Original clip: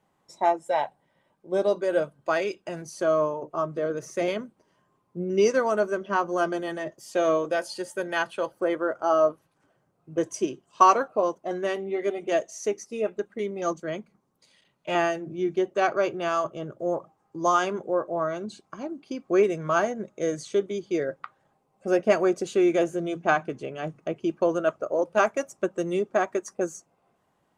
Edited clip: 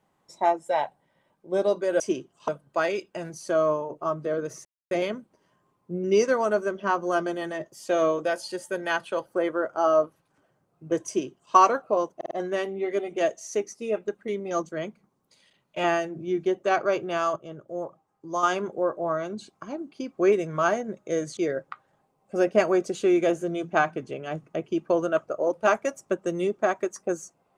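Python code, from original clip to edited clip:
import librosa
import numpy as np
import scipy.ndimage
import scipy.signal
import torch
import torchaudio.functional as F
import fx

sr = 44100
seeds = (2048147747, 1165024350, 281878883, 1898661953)

y = fx.edit(x, sr, fx.insert_silence(at_s=4.17, length_s=0.26),
    fx.duplicate(start_s=10.33, length_s=0.48, to_s=2.0),
    fx.stutter(start_s=11.42, slice_s=0.05, count=4),
    fx.clip_gain(start_s=16.47, length_s=1.07, db=-5.5),
    fx.cut(start_s=20.48, length_s=0.41), tone=tone)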